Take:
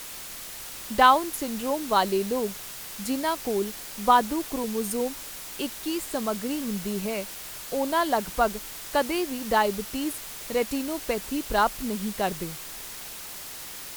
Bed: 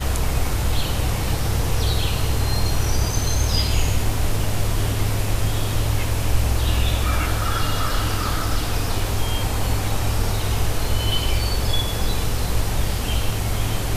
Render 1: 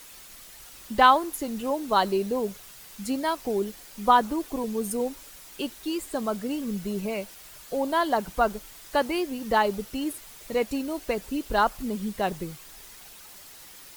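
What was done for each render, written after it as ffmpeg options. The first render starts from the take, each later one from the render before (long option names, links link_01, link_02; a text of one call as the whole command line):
ffmpeg -i in.wav -af "afftdn=noise_reduction=9:noise_floor=-39" out.wav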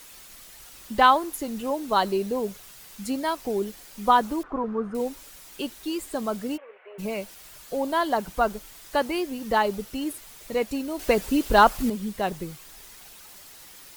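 ffmpeg -i in.wav -filter_complex "[0:a]asettb=1/sr,asplit=3[link_01][link_02][link_03];[link_01]atrim=end=4.434[link_04];[link_02]atrim=start=4.43:end=4.95,asetpts=PTS-STARTPTS,afade=type=in:duration=0.004:curve=qsin,afade=type=out:start_time=0.516:duration=0.004:curve=qsin,lowpass=frequency=1300:width_type=q:width=4.6[link_05];[link_03]atrim=start=4.946[link_06];[link_04][link_05]acrossfade=duration=0.004:curve1=hsin:curve2=qsin[link_07];[link_07][link_06]acrossfade=duration=0.004:curve1=qsin:curve2=hsin,asplit=3[link_08][link_09][link_10];[link_08]afade=type=out:start_time=6.56:duration=0.02[link_11];[link_09]asuperpass=centerf=1100:order=12:qfactor=0.53,afade=type=in:start_time=6.56:duration=0.02,afade=type=out:start_time=6.98:duration=0.02[link_12];[link_10]afade=type=in:start_time=6.98:duration=0.02[link_13];[link_11][link_12][link_13]amix=inputs=3:normalize=0,asettb=1/sr,asplit=3[link_14][link_15][link_16];[link_14]atrim=end=10.994[link_17];[link_15]atrim=start=10.99:end=11.9,asetpts=PTS-STARTPTS,afade=type=in:duration=0.004:curve=qsin,afade=type=out:start_time=0.906:duration=0.004:curve=qsin,acontrast=85[link_18];[link_16]atrim=start=11.896[link_19];[link_17][link_18]acrossfade=duration=0.004:curve1=hsin:curve2=qsin[link_20];[link_20][link_19]acrossfade=duration=0.004:curve1=qsin:curve2=hsin" out.wav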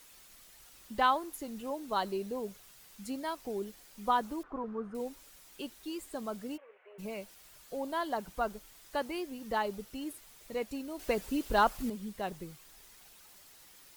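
ffmpeg -i in.wav -af "volume=-10dB" out.wav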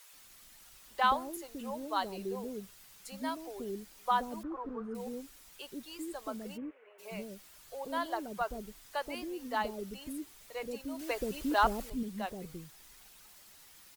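ffmpeg -i in.wav -filter_complex "[0:a]acrossover=split=480[link_01][link_02];[link_01]adelay=130[link_03];[link_03][link_02]amix=inputs=2:normalize=0" out.wav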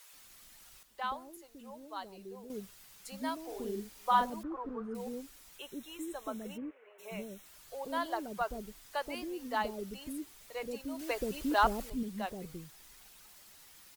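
ffmpeg -i in.wav -filter_complex "[0:a]asettb=1/sr,asplit=3[link_01][link_02][link_03];[link_01]atrim=end=3.444[link_04];[link_02]atrim=start=3.44:end=4.3,asetpts=PTS-STARTPTS,afade=type=in:duration=0.004:curve=qsin,afade=type=out:start_time=0.856:duration=0.004:curve=qsin,asplit=2[link_05][link_06];[link_06]adelay=44,volume=-3.5dB[link_07];[link_05][link_07]amix=inputs=2:normalize=0,atrim=end_sample=37926[link_08];[link_03]atrim=start=4.296[link_09];[link_04][link_08]acrossfade=duration=0.004:curve1=hsin:curve2=qsin[link_10];[link_10][link_09]acrossfade=duration=0.004:curve1=qsin:curve2=hsin,asettb=1/sr,asplit=3[link_11][link_12][link_13];[link_11]atrim=end=5.584[link_14];[link_12]atrim=start=5.58:end=7.46,asetpts=PTS-STARTPTS,afade=type=in:duration=0.004:curve=qsin,afade=type=out:start_time=1.876:duration=0.004:curve=qsin,asuperstop=centerf=4700:order=20:qfactor=4.8[link_15];[link_13]atrim=start=7.456[link_16];[link_14][link_15]acrossfade=duration=0.004:curve1=hsin:curve2=qsin[link_17];[link_17][link_16]acrossfade=duration=0.004:curve1=qsin:curve2=hsin,asplit=3[link_18][link_19][link_20];[link_18]atrim=end=0.832[link_21];[link_19]atrim=start=0.828:end=2.502,asetpts=PTS-STARTPTS,volume=-9.5dB[link_22];[link_20]atrim=start=2.498[link_23];[link_21][link_22]acrossfade=duration=0.004:curve1=hsin:curve2=hsin[link_24];[link_24][link_23]acrossfade=duration=0.004:curve1=hsin:curve2=hsin" out.wav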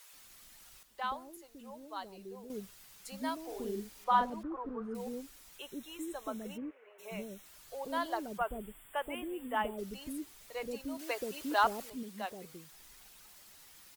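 ffmpeg -i in.wav -filter_complex "[0:a]asettb=1/sr,asplit=3[link_01][link_02][link_03];[link_01]atrim=end=4.044[link_04];[link_02]atrim=start=4.04:end=4.82,asetpts=PTS-STARTPTS,afade=type=in:duration=0.004:curve=qsin,afade=type=out:start_time=0.776:duration=0.004:curve=qsin,lowpass=frequency=3300:poles=1[link_05];[link_03]atrim=start=4.816[link_06];[link_04][link_05]acrossfade=duration=0.004:curve1=hsin:curve2=qsin[link_07];[link_07][link_06]acrossfade=duration=0.004:curve1=qsin:curve2=hsin,asplit=3[link_08][link_09][link_10];[link_08]afade=type=out:start_time=8.37:duration=0.02[link_11];[link_09]asuperstop=centerf=5200:order=20:qfactor=1.3,afade=type=in:start_time=8.37:duration=0.02,afade=type=out:start_time=9.77:duration=0.02[link_12];[link_10]afade=type=in:start_time=9.77:duration=0.02[link_13];[link_11][link_12][link_13]amix=inputs=3:normalize=0,asettb=1/sr,asplit=3[link_14][link_15][link_16];[link_14]atrim=end=10.974[link_17];[link_15]atrim=start=10.97:end=12.72,asetpts=PTS-STARTPTS,afade=type=in:duration=0.004:curve=qsin,afade=type=out:start_time=1.746:duration=0.004:curve=qsin,highpass=frequency=410:poles=1[link_18];[link_16]atrim=start=12.716[link_19];[link_17][link_18]acrossfade=duration=0.004:curve1=hsin:curve2=qsin[link_20];[link_20][link_19]acrossfade=duration=0.004:curve1=qsin:curve2=hsin" out.wav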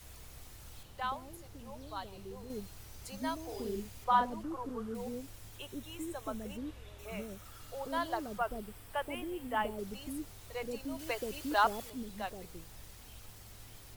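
ffmpeg -i in.wav -i bed.wav -filter_complex "[1:a]volume=-32dB[link_01];[0:a][link_01]amix=inputs=2:normalize=0" out.wav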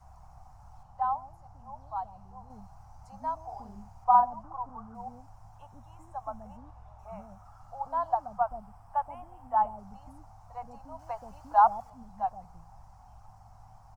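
ffmpeg -i in.wav -af "firequalizer=gain_entry='entry(160,0);entry(380,-26);entry(760,13);entry(1800,-15);entry(3500,-26);entry(5400,-13);entry(12000,-26)':delay=0.05:min_phase=1" out.wav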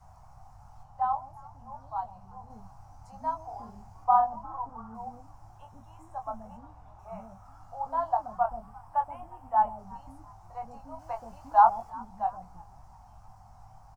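ffmpeg -i in.wav -filter_complex "[0:a]asplit=2[link_01][link_02];[link_02]adelay=22,volume=-5.5dB[link_03];[link_01][link_03]amix=inputs=2:normalize=0,asplit=3[link_04][link_05][link_06];[link_05]adelay=350,afreqshift=78,volume=-23dB[link_07];[link_06]adelay=700,afreqshift=156,volume=-32.1dB[link_08];[link_04][link_07][link_08]amix=inputs=3:normalize=0" out.wav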